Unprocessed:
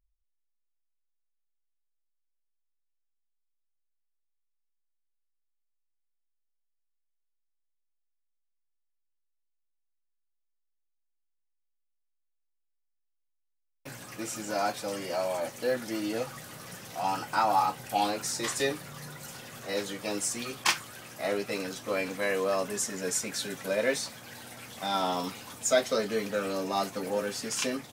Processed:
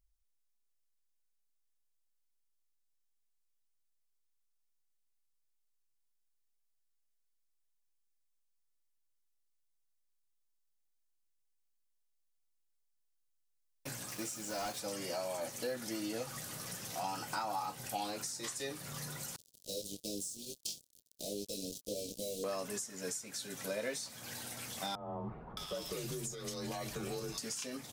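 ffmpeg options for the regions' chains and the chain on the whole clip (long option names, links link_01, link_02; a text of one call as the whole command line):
ffmpeg -i in.wav -filter_complex "[0:a]asettb=1/sr,asplit=3[link_01][link_02][link_03];[link_01]atrim=end=14.094[link_04];[link_02]atrim=start=14.09:end=14.8,asetpts=PTS-STARTPTS,afade=type=in:duration=0.004:curve=qsin,afade=type=out:start_time=0.706:duration=0.004:curve=qsin,highpass=55,asoftclip=type=hard:threshold=-27dB,acrusher=bits=6:mix=0:aa=0.5[link_05];[link_03]atrim=start=14.796[link_06];[link_04][link_05]acrossfade=duration=0.004:curve1=hsin:curve2=qsin[link_07];[link_07][link_06]acrossfade=duration=0.004:curve1=qsin:curve2=hsin,asettb=1/sr,asplit=3[link_08][link_09][link_10];[link_08]atrim=end=19.364[link_11];[link_09]atrim=start=19.36:end=22.44,asetpts=PTS-STARTPTS,afade=type=in:duration=0.004:curve=qsin,afade=type=out:start_time=3.076:duration=0.004:curve=qsin,flanger=delay=19:depth=3:speed=1.5,acrusher=bits=5:mix=0:aa=0.5,asuperstop=centerf=1400:order=8:qfactor=0.5[link_12];[link_10]atrim=start=22.436[link_13];[link_11][link_12]acrossfade=duration=0.004:curve1=hsin:curve2=qsin[link_14];[link_14][link_13]acrossfade=duration=0.004:curve1=qsin:curve2=hsin,asettb=1/sr,asplit=3[link_15][link_16][link_17];[link_15]atrim=end=24.954[link_18];[link_16]atrim=start=24.95:end=27.38,asetpts=PTS-STARTPTS,afade=type=in:duration=0.004:curve=qsin,afade=type=out:start_time=2.426:duration=0.004:curve=qsin,acompressor=threshold=-34dB:ratio=5:attack=3.2:release=140:knee=1:detection=peak,afreqshift=-69,acrossover=split=1300[link_19][link_20];[link_20]adelay=620[link_21];[link_19][link_21]amix=inputs=2:normalize=0,atrim=end_sample=107163[link_22];[link_17]atrim=start=27.376[link_23];[link_18][link_22]acrossfade=duration=0.004:curve1=hsin:curve2=qsin[link_24];[link_24][link_23]acrossfade=duration=0.004:curve1=qsin:curve2=hsin,bass=frequency=250:gain=2,treble=frequency=4000:gain=14,acompressor=threshold=-33dB:ratio=6,highshelf=frequency=5000:gain=-8.5,volume=-1.5dB" out.wav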